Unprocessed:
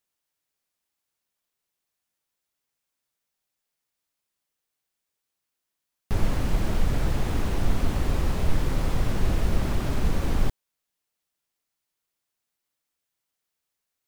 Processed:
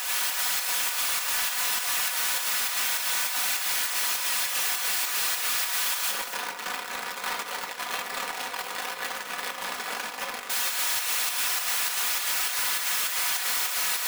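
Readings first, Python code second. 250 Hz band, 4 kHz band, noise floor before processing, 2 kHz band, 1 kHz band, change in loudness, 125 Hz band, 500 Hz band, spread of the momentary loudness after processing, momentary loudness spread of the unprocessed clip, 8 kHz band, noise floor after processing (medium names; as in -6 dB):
-17.0 dB, +16.5 dB, -84 dBFS, +14.0 dB, +7.5 dB, +3.0 dB, under -30 dB, -4.5 dB, 8 LU, 2 LU, +20.5 dB, -37 dBFS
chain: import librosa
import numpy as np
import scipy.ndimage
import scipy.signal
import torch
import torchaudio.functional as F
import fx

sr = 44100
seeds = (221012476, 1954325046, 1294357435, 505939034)

p1 = np.sign(x) * np.sqrt(np.mean(np.square(x)))
p2 = scipy.signal.sosfilt(scipy.signal.butter(2, 1200.0, 'highpass', fs=sr, output='sos'), p1)
p3 = fx.high_shelf(p2, sr, hz=2100.0, db=-9.5)
p4 = p3 + 10.0 ** (-8.0 / 20.0) * np.pad(p3, (int(231 * sr / 1000.0), 0))[:len(p3)]
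p5 = fx.room_shoebox(p4, sr, seeds[0], volume_m3=390.0, walls='mixed', distance_m=1.1)
p6 = fx.volume_shaper(p5, sr, bpm=101, per_beat=2, depth_db=-12, release_ms=90.0, shape='slow start')
p7 = p5 + (p6 * librosa.db_to_amplitude(2.5))
p8 = 10.0 ** (-20.5 / 20.0) * (np.abs((p7 / 10.0 ** (-20.5 / 20.0) + 3.0) % 4.0 - 2.0) - 1.0)
p9 = p8 + 0.57 * np.pad(p8, (int(4.1 * sr / 1000.0), 0))[:len(p8)]
y = p9 * librosa.db_to_amplitude(-1.5)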